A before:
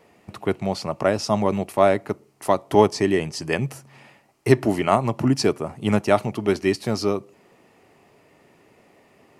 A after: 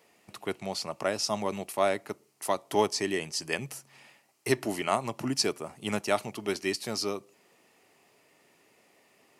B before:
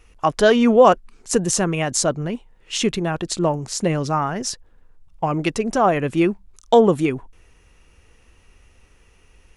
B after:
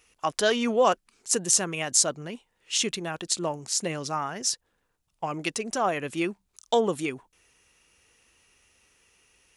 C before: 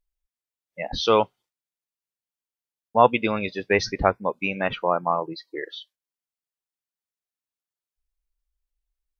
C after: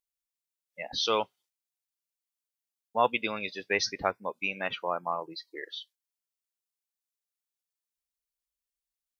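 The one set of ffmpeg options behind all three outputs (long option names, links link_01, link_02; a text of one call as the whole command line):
ffmpeg -i in.wav -af "highpass=frequency=210:poles=1,highshelf=frequency=2500:gain=11.5,volume=-9.5dB" out.wav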